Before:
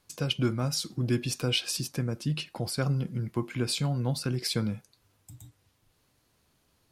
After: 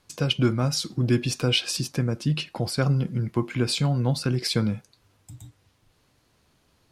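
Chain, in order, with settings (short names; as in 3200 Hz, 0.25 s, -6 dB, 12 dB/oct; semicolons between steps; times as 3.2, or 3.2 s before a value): high shelf 11000 Hz -12 dB; gain +5.5 dB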